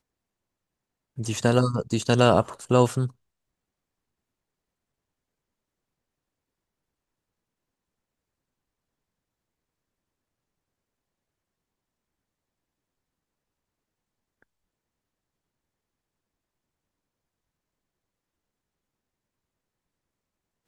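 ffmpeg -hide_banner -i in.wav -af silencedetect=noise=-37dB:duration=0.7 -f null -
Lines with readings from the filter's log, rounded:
silence_start: 0.00
silence_end: 1.18 | silence_duration: 1.18
silence_start: 3.08
silence_end: 20.67 | silence_duration: 17.59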